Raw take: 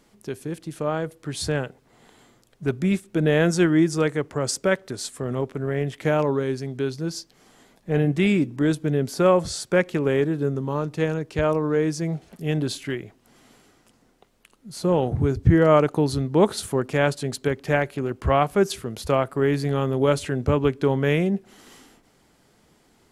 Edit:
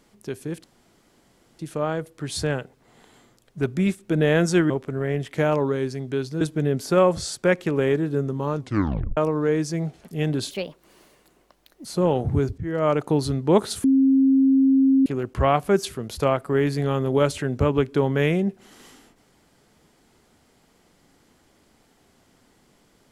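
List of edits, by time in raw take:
0:00.64: splice in room tone 0.95 s
0:03.75–0:05.37: remove
0:07.08–0:08.69: remove
0:10.85: tape stop 0.60 s
0:12.79–0:14.72: play speed 144%
0:15.45–0:15.99: fade in linear, from −21.5 dB
0:16.71–0:17.93: beep over 268 Hz −13.5 dBFS

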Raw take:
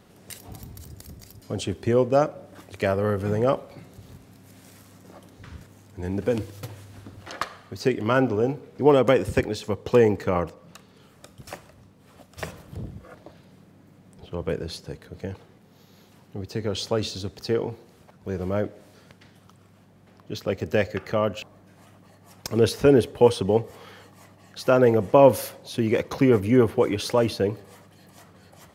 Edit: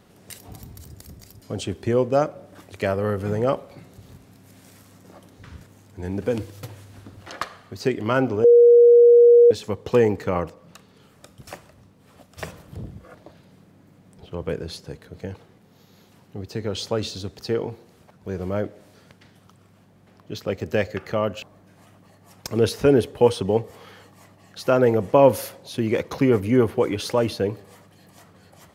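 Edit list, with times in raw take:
0:08.44–0:09.51: beep over 476 Hz −8 dBFS

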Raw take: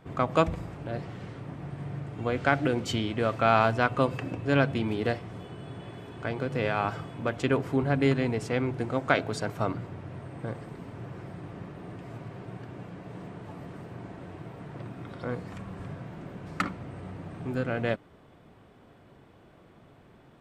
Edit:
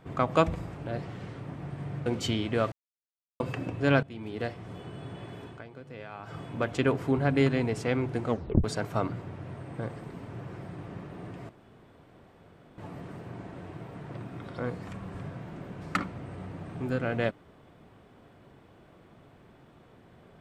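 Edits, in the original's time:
0:02.06–0:02.71: remove
0:03.37–0:04.05: silence
0:04.68–0:05.48: fade in, from −19.5 dB
0:06.10–0:07.06: duck −15 dB, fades 0.18 s
0:08.93: tape stop 0.36 s
0:12.14–0:13.43: fill with room tone

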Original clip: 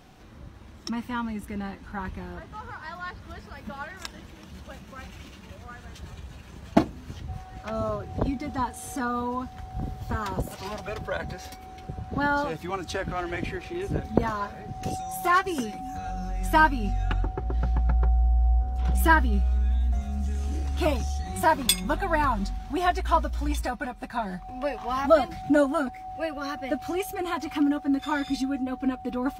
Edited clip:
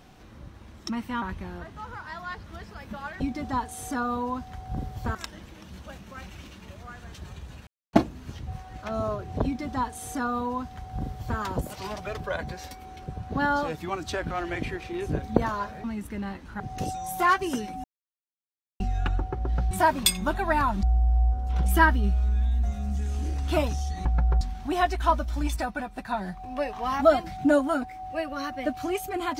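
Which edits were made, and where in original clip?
0:01.22–0:01.98: move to 0:14.65
0:06.48–0:06.74: silence
0:08.25–0:10.20: duplicate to 0:03.96
0:15.89–0:16.85: silence
0:17.76–0:18.12: swap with 0:21.34–0:22.46

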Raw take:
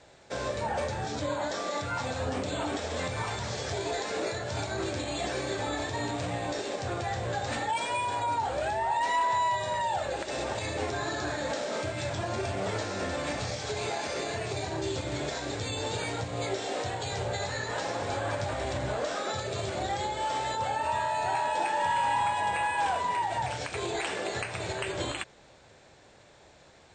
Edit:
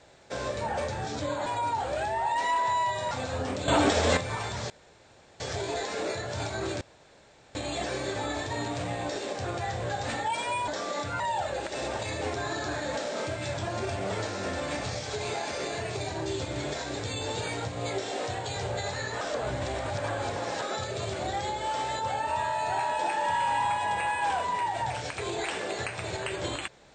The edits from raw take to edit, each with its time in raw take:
0:01.46–0:01.98: swap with 0:08.11–0:09.76
0:02.55–0:03.04: clip gain +9.5 dB
0:03.57: splice in room tone 0.70 s
0:04.98: splice in room tone 0.74 s
0:17.77–0:19.18: reverse

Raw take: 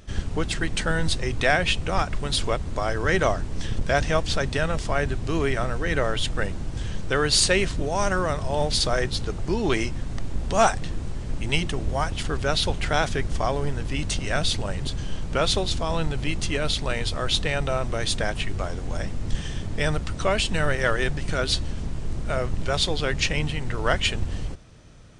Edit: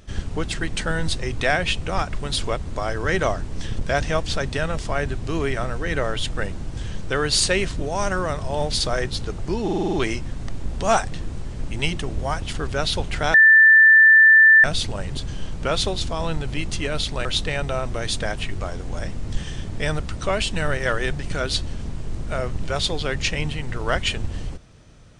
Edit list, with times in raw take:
0:09.63: stutter 0.05 s, 7 plays
0:13.04–0:14.34: beep over 1,770 Hz −8 dBFS
0:16.95–0:17.23: remove

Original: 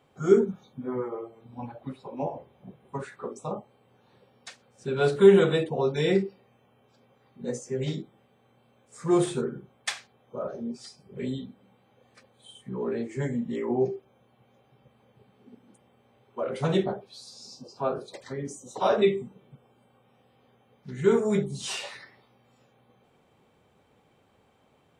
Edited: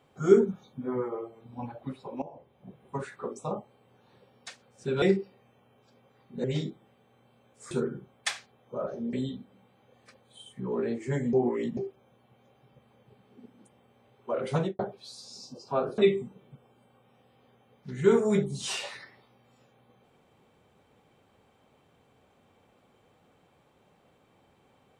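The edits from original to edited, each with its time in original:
0:02.22–0:02.83: fade in, from −18 dB
0:05.02–0:06.08: remove
0:07.50–0:07.76: remove
0:09.03–0:09.32: remove
0:10.74–0:11.22: remove
0:13.42–0:13.86: reverse
0:16.62–0:16.88: fade out and dull
0:18.07–0:18.98: remove

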